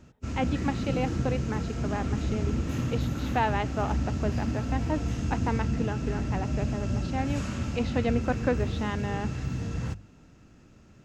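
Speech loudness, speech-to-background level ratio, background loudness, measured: −33.5 LKFS, −2.5 dB, −31.0 LKFS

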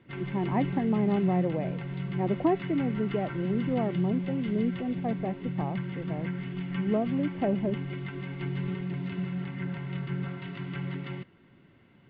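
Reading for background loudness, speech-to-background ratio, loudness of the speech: −35.0 LKFS, 4.5 dB, −30.5 LKFS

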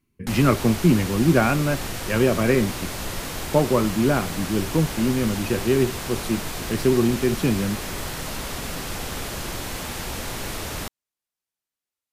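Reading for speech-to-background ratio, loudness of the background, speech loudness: 8.5 dB, −30.5 LKFS, −22.0 LKFS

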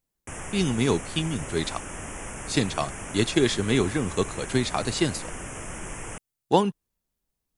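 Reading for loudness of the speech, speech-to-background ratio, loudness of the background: −26.0 LKFS, 10.5 dB, −36.5 LKFS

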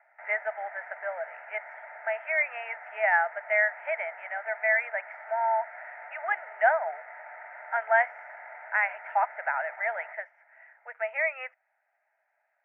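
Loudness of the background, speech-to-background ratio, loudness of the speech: −44.0 LKFS, 15.0 dB, −29.0 LKFS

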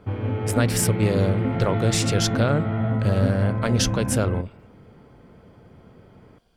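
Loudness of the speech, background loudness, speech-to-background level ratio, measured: −24.0 LKFS, −25.5 LKFS, 1.5 dB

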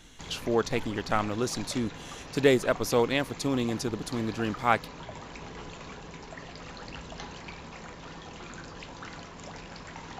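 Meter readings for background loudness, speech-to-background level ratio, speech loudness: −43.0 LKFS, 14.5 dB, −28.5 LKFS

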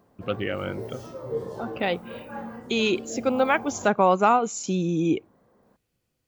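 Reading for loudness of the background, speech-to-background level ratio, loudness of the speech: −37.5 LKFS, 13.0 dB, −24.5 LKFS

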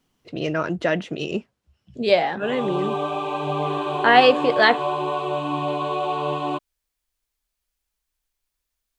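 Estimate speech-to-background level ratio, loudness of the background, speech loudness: 5.5 dB, −26.0 LKFS, −20.5 LKFS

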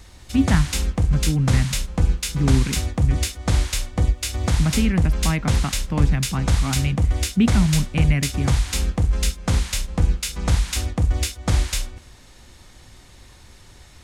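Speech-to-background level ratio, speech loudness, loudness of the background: −1.0 dB, −24.0 LKFS, −23.0 LKFS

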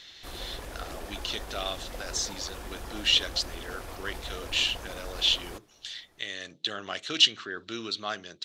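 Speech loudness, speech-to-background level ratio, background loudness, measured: −29.0 LKFS, 12.5 dB, −41.5 LKFS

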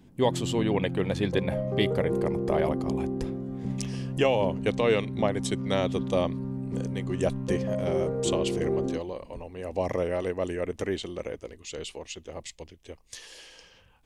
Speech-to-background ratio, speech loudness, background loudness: 1.0 dB, −30.5 LKFS, −31.5 LKFS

